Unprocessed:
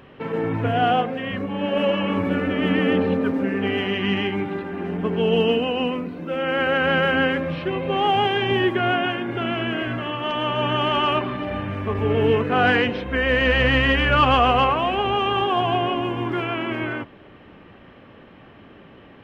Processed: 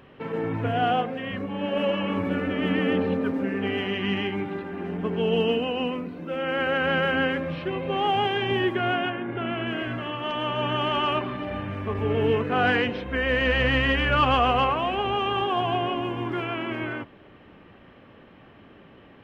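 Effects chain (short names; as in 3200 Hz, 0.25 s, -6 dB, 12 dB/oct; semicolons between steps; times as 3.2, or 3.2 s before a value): 9.09–9.65 LPF 2100 Hz -> 3600 Hz 12 dB/oct; gain -4 dB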